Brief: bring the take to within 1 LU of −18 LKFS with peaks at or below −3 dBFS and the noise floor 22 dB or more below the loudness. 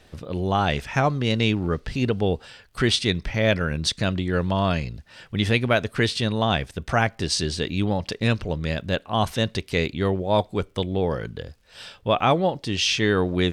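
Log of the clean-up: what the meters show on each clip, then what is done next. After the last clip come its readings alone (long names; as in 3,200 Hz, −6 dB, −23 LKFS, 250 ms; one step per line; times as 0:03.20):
crackle rate 42 per second; integrated loudness −24.0 LKFS; sample peak −5.0 dBFS; target loudness −18.0 LKFS
→ click removal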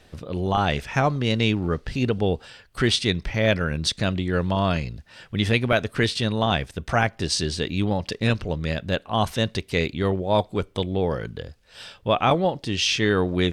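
crackle rate 0.37 per second; integrated loudness −24.0 LKFS; sample peak −5.0 dBFS; target loudness −18.0 LKFS
→ level +6 dB
brickwall limiter −3 dBFS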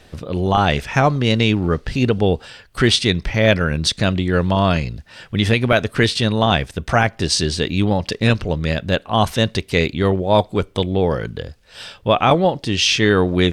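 integrated loudness −18.0 LKFS; sample peak −3.0 dBFS; background noise floor −49 dBFS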